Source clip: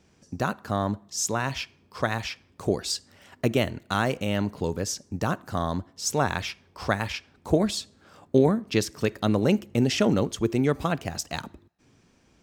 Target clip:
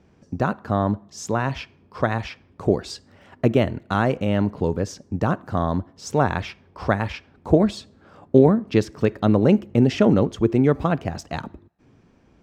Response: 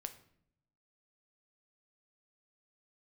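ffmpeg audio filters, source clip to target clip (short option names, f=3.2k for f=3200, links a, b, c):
-af "lowpass=f=1.2k:p=1,volume=6dB"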